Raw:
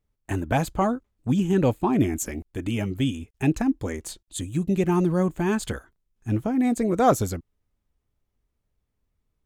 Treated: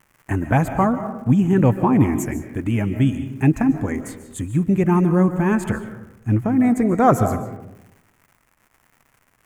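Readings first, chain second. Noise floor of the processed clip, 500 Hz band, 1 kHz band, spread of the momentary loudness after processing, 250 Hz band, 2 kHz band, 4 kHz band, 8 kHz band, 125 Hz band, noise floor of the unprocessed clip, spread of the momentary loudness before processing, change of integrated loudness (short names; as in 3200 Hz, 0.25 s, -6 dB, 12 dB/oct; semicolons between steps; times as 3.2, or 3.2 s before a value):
-63 dBFS, +3.0 dB, +5.0 dB, 12 LU, +6.0 dB, +5.0 dB, n/a, -2.0 dB, +7.5 dB, -77 dBFS, 11 LU, +5.5 dB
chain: crackle 220/s -42 dBFS; graphic EQ 125/250/1000/2000/4000 Hz +8/+4/+5/+7/-12 dB; digital reverb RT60 0.93 s, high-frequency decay 0.4×, pre-delay 0.105 s, DRR 9.5 dB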